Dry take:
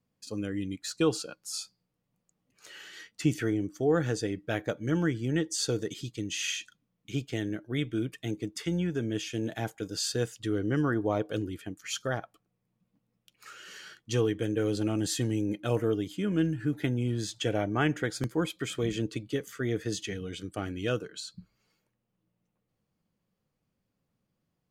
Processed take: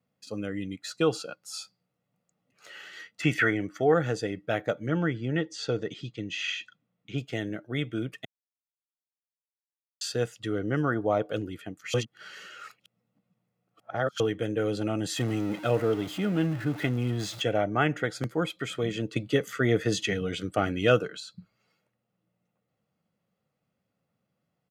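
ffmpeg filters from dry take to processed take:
ffmpeg -i in.wav -filter_complex "[0:a]asettb=1/sr,asplit=3[link_01][link_02][link_03];[link_01]atrim=end=3.234[link_04];[link_02]atrim=start=3.23:end=3.94,asetpts=PTS-STARTPTS,afade=type=in:duration=0.004:curve=qsin,afade=type=out:start_time=0.706:duration=0.004:curve=qsin,equalizer=frequency=1800:width=0.82:gain=13.5[link_05];[link_03]atrim=start=3.936[link_06];[link_04][link_05]acrossfade=duration=0.004:curve1=hsin:curve2=qsin[link_07];[link_07][link_06]acrossfade=duration=0.004:curve1=qsin:curve2=hsin,asettb=1/sr,asplit=3[link_08][link_09][link_10];[link_08]atrim=end=4.874[link_11];[link_09]atrim=start=4.87:end=7.18,asetpts=PTS-STARTPTS,afade=type=in:duration=0.004:curve=qsin,afade=type=out:start_time=2.306:duration=0.004:curve=qsin,lowpass=4500[link_12];[link_10]atrim=start=7.176[link_13];[link_11][link_12]acrossfade=duration=0.004:curve1=hsin:curve2=qsin[link_14];[link_14][link_13]acrossfade=duration=0.004:curve1=qsin:curve2=hsin,asettb=1/sr,asplit=3[link_15][link_16][link_17];[link_15]atrim=end=15.164[link_18];[link_16]atrim=start=15.16:end=17.42,asetpts=PTS-STARTPTS,afade=type=in:duration=0.004:curve=qsin,afade=type=out:start_time=2.256:duration=0.004:curve=qsin,aeval=exprs='val(0)+0.5*0.0141*sgn(val(0))':channel_layout=same[link_19];[link_17]atrim=start=17.416[link_20];[link_18][link_19]acrossfade=duration=0.004:curve1=hsin:curve2=qsin[link_21];[link_21][link_20]acrossfade=duration=0.004:curve1=qsin:curve2=hsin,asettb=1/sr,asplit=3[link_22][link_23][link_24];[link_22]atrim=end=19.164[link_25];[link_23]atrim=start=19.16:end=21.17,asetpts=PTS-STARTPTS,afade=type=in:duration=0.004:curve=qsin,afade=type=out:start_time=2.006:duration=0.004:curve=qsin,acontrast=59[link_26];[link_24]atrim=start=21.166[link_27];[link_25][link_26]acrossfade=duration=0.004:curve1=hsin:curve2=qsin[link_28];[link_28][link_27]acrossfade=duration=0.004:curve1=qsin:curve2=hsin,asplit=5[link_29][link_30][link_31][link_32][link_33];[link_29]atrim=end=8.25,asetpts=PTS-STARTPTS,afade=type=out:start_time=8.246:duration=0.004:curve=hsin[link_34];[link_30]atrim=start=8.25:end=10.01,asetpts=PTS-STARTPTS,volume=0[link_35];[link_31]atrim=start=10.01:end=11.942,asetpts=PTS-STARTPTS,afade=type=in:duration=0.004:curve=hsin[link_36];[link_32]atrim=start=11.938:end=14.202,asetpts=PTS-STARTPTS,areverse[link_37];[link_33]atrim=start=14.198[link_38];[link_34][link_35][link_36]concat=n=3:v=0:a=1[link_39];[link_39][link_37]acrossfade=duration=0.004:curve1=hsin:curve2=hsin[link_40];[link_40][link_38]acrossfade=duration=0.004:curve1=hsin:curve2=hsin,highpass=120,bass=frequency=250:gain=-2,treble=frequency=4000:gain=-8,aecho=1:1:1.5:0.37,volume=3dB" out.wav

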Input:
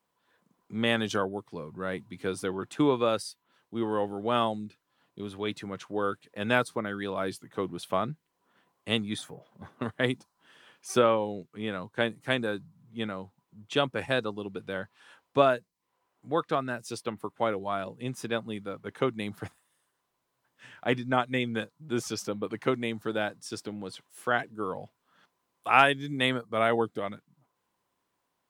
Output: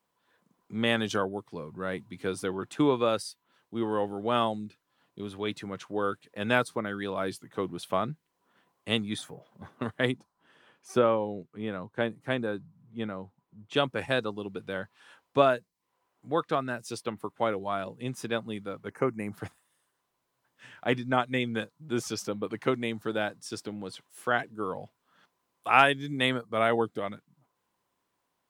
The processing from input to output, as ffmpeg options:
ffmpeg -i in.wav -filter_complex "[0:a]asplit=3[link_01][link_02][link_03];[link_01]afade=type=out:start_time=10.1:duration=0.02[link_04];[link_02]highshelf=frequency=2100:gain=-9.5,afade=type=in:start_time=10.1:duration=0.02,afade=type=out:start_time=13.73:duration=0.02[link_05];[link_03]afade=type=in:start_time=13.73:duration=0.02[link_06];[link_04][link_05][link_06]amix=inputs=3:normalize=0,asettb=1/sr,asplit=3[link_07][link_08][link_09];[link_07]atrim=end=18.904[link_10];[link_08]atrim=start=18.9:end=19.33,asetpts=PTS-STARTPTS,afade=type=in:duration=0.004:curve=qsin,afade=type=out:start_time=0.426:duration=0.004:curve=qsin,asuperstop=centerf=3500:order=4:qfactor=1.2[link_11];[link_09]atrim=start=19.326[link_12];[link_10][link_11]acrossfade=duration=0.004:curve1=hsin:curve2=qsin[link_13];[link_13][link_12]acrossfade=duration=0.004:curve1=qsin:curve2=hsin" out.wav

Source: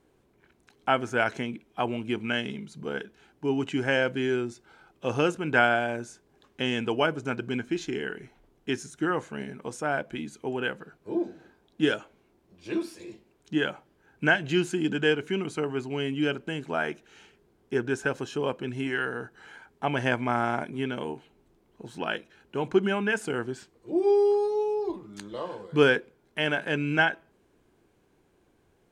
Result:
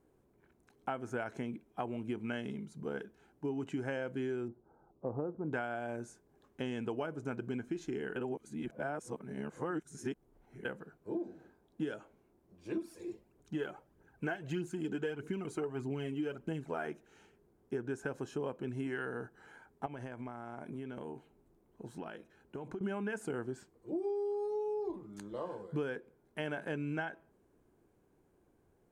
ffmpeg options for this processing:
ffmpeg -i in.wav -filter_complex "[0:a]asettb=1/sr,asplit=3[link_01][link_02][link_03];[link_01]atrim=end=4.484[link_04];[link_02]atrim=start=4.48:end=5.53,asetpts=PTS-STARTPTS,afade=type=in:duration=0.004:curve=qsin,afade=type=out:start_time=1.046:duration=0.004:curve=qsin,lowpass=frequency=1000:width=0.5412,lowpass=frequency=1000:width=1.3066[link_05];[link_03]atrim=start=5.526[link_06];[link_04][link_05]acrossfade=duration=0.004:curve1=hsin:curve2=qsin[link_07];[link_07][link_06]acrossfade=duration=0.004:curve1=qsin:curve2=hsin,asettb=1/sr,asplit=3[link_08][link_09][link_10];[link_08]atrim=end=12.774[link_11];[link_09]atrim=start=12.77:end=16.87,asetpts=PTS-STARTPTS,afade=type=in:duration=0.004:curve=qsin,afade=type=out:start_time=4.096:duration=0.004:curve=qsin,aphaser=in_gain=1:out_gain=1:delay=3:decay=0.5:speed=1.6:type=triangular[link_12];[link_10]atrim=start=16.866[link_13];[link_11][link_12]acrossfade=duration=0.004:curve1=hsin:curve2=qsin[link_14];[link_14][link_13]acrossfade=duration=0.004:curve1=qsin:curve2=hsin,asettb=1/sr,asplit=3[link_15][link_16][link_17];[link_15]atrim=end=19.864[link_18];[link_16]atrim=start=19.86:end=22.81,asetpts=PTS-STARTPTS,afade=type=in:duration=0.004:curve=qsin,afade=type=out:start_time=2.946:duration=0.004:curve=qsin,acompressor=threshold=-33dB:ratio=16:attack=3.2:release=140:knee=1:detection=peak[link_19];[link_17]atrim=start=22.806[link_20];[link_18][link_19]acrossfade=duration=0.004:curve1=hsin:curve2=qsin[link_21];[link_21][link_20]acrossfade=duration=0.004:curve1=qsin:curve2=hsin,asplit=3[link_22][link_23][link_24];[link_22]atrim=end=8.162[link_25];[link_23]atrim=start=8.158:end=10.652,asetpts=PTS-STARTPTS,areverse[link_26];[link_24]atrim=start=10.648[link_27];[link_25][link_26]acrossfade=duration=0.004:curve1=hsin:curve2=hsin[link_28];[link_28][link_27]acrossfade=duration=0.004:curve1=hsin:curve2=hsin,equalizer=frequency=3400:width_type=o:width=2.1:gain=-10.5,acompressor=threshold=-29dB:ratio=12,volume=-4dB" out.wav

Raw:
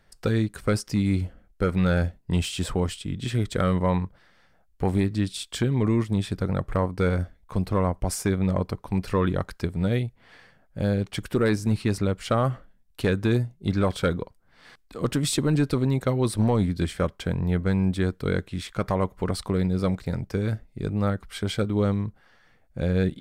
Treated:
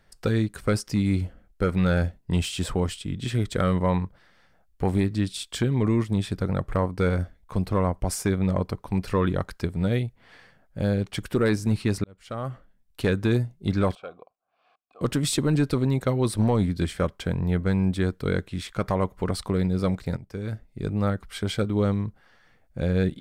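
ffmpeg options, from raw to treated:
ffmpeg -i in.wav -filter_complex "[0:a]asettb=1/sr,asplit=3[link_01][link_02][link_03];[link_01]atrim=end=13.954[link_04];[link_02]atrim=start=13.95:end=15.01,asetpts=PTS-STARTPTS,afade=type=in:duration=0.004:curve=qsin,afade=type=out:start_time=1.056:duration=0.004:curve=qsin,asplit=3[link_05][link_06][link_07];[link_05]bandpass=frequency=730:width_type=q:width=8,volume=0dB[link_08];[link_06]bandpass=frequency=1090:width_type=q:width=8,volume=-6dB[link_09];[link_07]bandpass=frequency=2440:width_type=q:width=8,volume=-9dB[link_10];[link_08][link_09][link_10]amix=inputs=3:normalize=0[link_11];[link_03]atrim=start=15.006[link_12];[link_04][link_11]acrossfade=duration=0.004:curve1=hsin:curve2=qsin[link_13];[link_13][link_12]acrossfade=duration=0.004:curve1=qsin:curve2=hsin,asplit=3[link_14][link_15][link_16];[link_14]atrim=end=12.04,asetpts=PTS-STARTPTS,afade=type=out:start_time=12.036:duration=0.004:curve=hsin[link_17];[link_15]atrim=start=12.04:end=20.17,asetpts=PTS-STARTPTS,afade=type=in:duration=1.03,afade=type=out:start_time=8.126:duration=0.004:curve=hsin:silence=0.223872[link_18];[link_16]atrim=start=20.17,asetpts=PTS-STARTPTS,afade=type=in:duration=0.71:silence=0.223872[link_19];[link_17][link_18][link_19]concat=n=3:v=0:a=1" out.wav

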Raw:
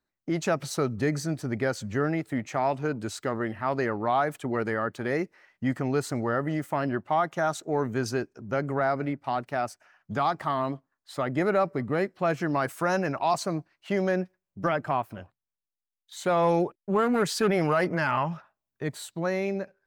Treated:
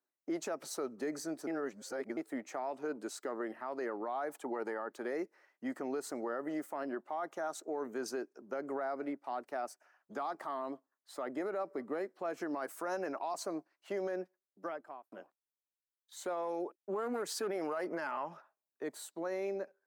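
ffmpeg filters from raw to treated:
ffmpeg -i in.wav -filter_complex "[0:a]asettb=1/sr,asplit=3[link_01][link_02][link_03];[link_01]atrim=end=4.304[link_04];[link_02]atrim=start=4.3:end=4.9,asetpts=PTS-STARTPTS,afade=type=in:duration=0.004:curve=qsin,afade=type=out:start_time=0.596:duration=0.004:curve=qsin,equalizer=frequency=860:width_type=o:width=0.25:gain=10.5[link_05];[link_03]atrim=start=4.896[link_06];[link_04][link_05]acrossfade=duration=0.004:curve1=hsin:curve2=qsin[link_07];[link_07][link_06]acrossfade=duration=0.004:curve1=qsin:curve2=hsin,asplit=4[link_08][link_09][link_10][link_11];[link_08]atrim=end=1.472[link_12];[link_09]atrim=start=1.468:end=2.172,asetpts=PTS-STARTPTS,areverse[link_13];[link_10]atrim=start=2.168:end=15.12,asetpts=PTS-STARTPTS,afade=type=out:start_time=11.872:duration=1.08[link_14];[link_11]atrim=start=15.12,asetpts=PTS-STARTPTS,afade=type=in:duration=0.004:curve=hsin[link_15];[link_12][link_13]acrossfade=duration=0.004:curve1=hsin:curve2=hsin[link_16];[link_14][link_15]concat=n=2:v=0:a=1[link_17];[link_16][link_17]acrossfade=duration=0.004:curve1=hsin:curve2=hsin,highpass=frequency=290:width=0.5412,highpass=frequency=290:width=1.3066,equalizer=frequency=2900:width_type=o:width=1.7:gain=-8,alimiter=level_in=0.5dB:limit=-24dB:level=0:latency=1:release=77,volume=-0.5dB,volume=-4.5dB" out.wav

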